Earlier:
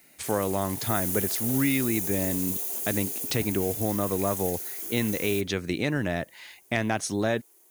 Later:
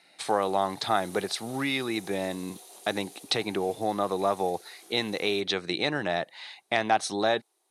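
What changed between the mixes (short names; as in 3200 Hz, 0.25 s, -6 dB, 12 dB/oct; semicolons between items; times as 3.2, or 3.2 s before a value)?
background -9.5 dB; master: add speaker cabinet 220–9900 Hz, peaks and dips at 250 Hz -8 dB, 790 Hz +9 dB, 1200 Hz +4 dB, 3900 Hz +10 dB, 6900 Hz -7 dB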